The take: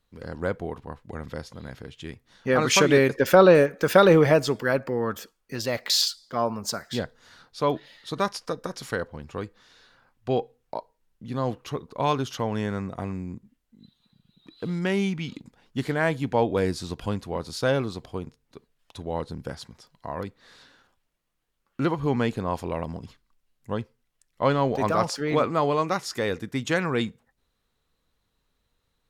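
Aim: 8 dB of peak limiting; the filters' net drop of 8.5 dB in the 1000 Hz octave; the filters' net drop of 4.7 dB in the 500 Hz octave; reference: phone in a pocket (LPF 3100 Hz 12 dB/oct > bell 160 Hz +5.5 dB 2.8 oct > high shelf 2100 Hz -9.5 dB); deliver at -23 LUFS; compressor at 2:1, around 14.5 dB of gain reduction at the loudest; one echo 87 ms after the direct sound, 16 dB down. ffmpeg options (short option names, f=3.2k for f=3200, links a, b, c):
-af "equalizer=f=500:t=o:g=-6,equalizer=f=1k:t=o:g=-8,acompressor=threshold=-44dB:ratio=2,alimiter=level_in=5.5dB:limit=-24dB:level=0:latency=1,volume=-5.5dB,lowpass=3.1k,equalizer=f=160:t=o:w=2.8:g=5.5,highshelf=f=2.1k:g=-9.5,aecho=1:1:87:0.158,volume=16.5dB"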